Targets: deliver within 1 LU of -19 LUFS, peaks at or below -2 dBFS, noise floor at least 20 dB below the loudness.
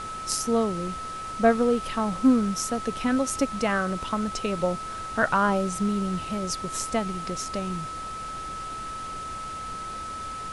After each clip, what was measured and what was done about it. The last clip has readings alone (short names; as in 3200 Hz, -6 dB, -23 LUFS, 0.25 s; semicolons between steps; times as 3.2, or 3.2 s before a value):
steady tone 1300 Hz; tone level -33 dBFS; noise floor -35 dBFS; noise floor target -47 dBFS; loudness -27.0 LUFS; peak -8.0 dBFS; loudness target -19.0 LUFS
-> notch 1300 Hz, Q 30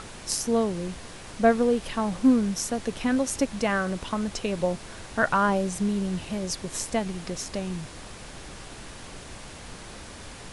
steady tone none; noise floor -43 dBFS; noise floor target -47 dBFS
-> noise print and reduce 6 dB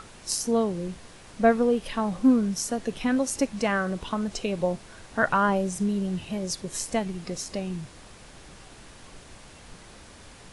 noise floor -49 dBFS; loudness -26.5 LUFS; peak -8.0 dBFS; loudness target -19.0 LUFS
-> gain +7.5 dB; limiter -2 dBFS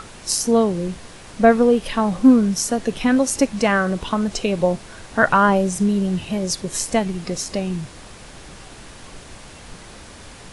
loudness -19.5 LUFS; peak -2.0 dBFS; noise floor -41 dBFS